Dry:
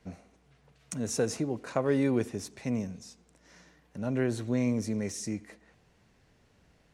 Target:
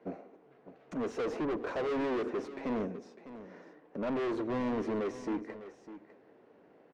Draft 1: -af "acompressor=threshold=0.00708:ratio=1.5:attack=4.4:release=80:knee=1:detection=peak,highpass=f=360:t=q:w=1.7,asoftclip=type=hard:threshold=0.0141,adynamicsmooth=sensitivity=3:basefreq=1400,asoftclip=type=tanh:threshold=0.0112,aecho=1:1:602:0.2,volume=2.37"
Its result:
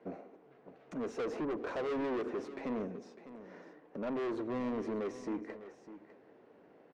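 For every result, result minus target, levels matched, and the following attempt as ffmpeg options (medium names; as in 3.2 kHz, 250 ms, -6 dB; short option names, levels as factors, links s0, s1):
saturation: distortion +12 dB; compression: peak gain reduction +8 dB
-af "acompressor=threshold=0.00708:ratio=1.5:attack=4.4:release=80:knee=1:detection=peak,highpass=f=360:t=q:w=1.7,asoftclip=type=hard:threshold=0.0141,adynamicsmooth=sensitivity=3:basefreq=1400,asoftclip=type=tanh:threshold=0.0237,aecho=1:1:602:0.2,volume=2.37"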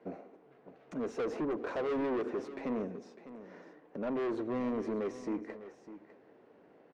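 compression: peak gain reduction +8 dB
-af "highpass=f=360:t=q:w=1.7,asoftclip=type=hard:threshold=0.0141,adynamicsmooth=sensitivity=3:basefreq=1400,asoftclip=type=tanh:threshold=0.0237,aecho=1:1:602:0.2,volume=2.37"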